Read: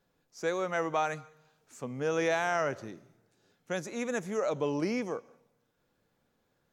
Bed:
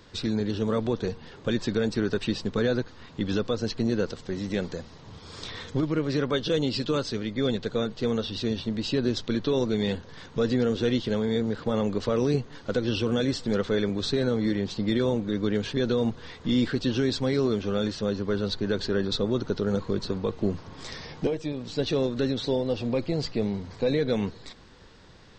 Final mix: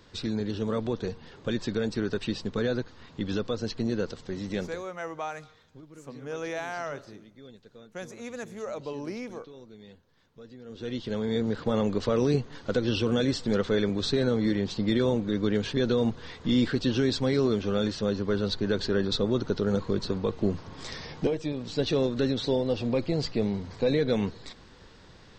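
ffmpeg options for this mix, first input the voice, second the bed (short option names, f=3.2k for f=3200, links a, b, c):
-filter_complex "[0:a]adelay=4250,volume=-5dB[a];[1:a]volume=20dB,afade=t=out:st=4.62:d=0.25:silence=0.1,afade=t=in:st=10.64:d=0.88:silence=0.0707946[b];[a][b]amix=inputs=2:normalize=0"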